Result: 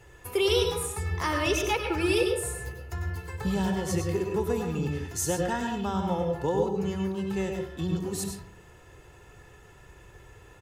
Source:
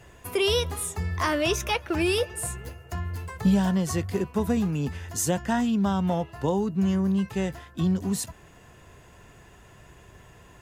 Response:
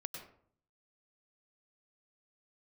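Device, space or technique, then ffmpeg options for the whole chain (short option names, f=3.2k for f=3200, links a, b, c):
microphone above a desk: -filter_complex "[0:a]aecho=1:1:2.3:0.54[a];[1:a]atrim=start_sample=2205[b];[a][b]afir=irnorm=-1:irlink=0"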